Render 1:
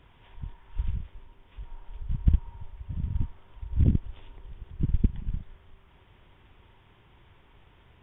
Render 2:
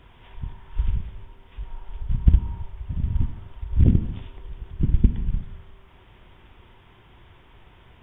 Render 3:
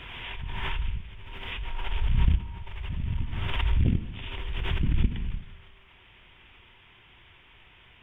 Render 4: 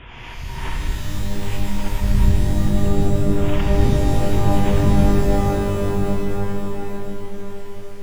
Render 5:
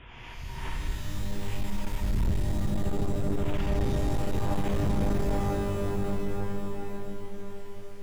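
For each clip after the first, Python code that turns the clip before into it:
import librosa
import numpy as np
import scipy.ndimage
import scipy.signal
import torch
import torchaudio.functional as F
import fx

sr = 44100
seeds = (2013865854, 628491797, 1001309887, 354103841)

y1 = fx.rev_gated(x, sr, seeds[0], gate_ms=330, shape='falling', drr_db=8.0)
y1 = F.gain(torch.from_numpy(y1), 5.5).numpy()
y2 = fx.peak_eq(y1, sr, hz=2600.0, db=14.0, octaves=1.6)
y2 = fx.pre_swell(y2, sr, db_per_s=22.0)
y2 = F.gain(torch.from_numpy(y2), -8.5).numpy()
y3 = fx.lowpass(y2, sr, hz=1400.0, slope=6)
y3 = fx.rev_shimmer(y3, sr, seeds[1], rt60_s=3.6, semitones=12, shimmer_db=-2, drr_db=-0.5)
y3 = F.gain(torch.from_numpy(y3), 4.0).numpy()
y4 = np.clip(10.0 ** (13.0 / 20.0) * y3, -1.0, 1.0) / 10.0 ** (13.0 / 20.0)
y4 = F.gain(torch.from_numpy(y4), -8.5).numpy()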